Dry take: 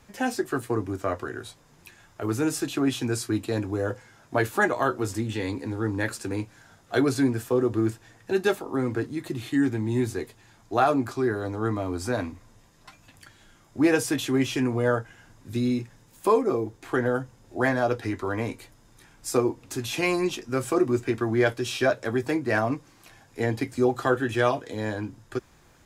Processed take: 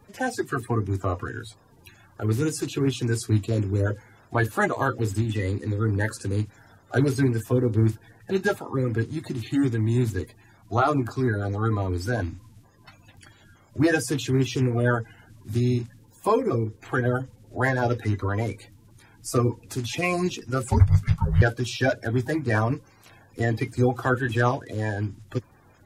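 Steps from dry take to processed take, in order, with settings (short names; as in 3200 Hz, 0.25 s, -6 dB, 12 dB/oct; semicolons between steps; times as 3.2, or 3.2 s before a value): bin magnitudes rounded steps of 30 dB; 20.68–21.42 frequency shift -270 Hz; bell 100 Hz +10.5 dB 0.71 oct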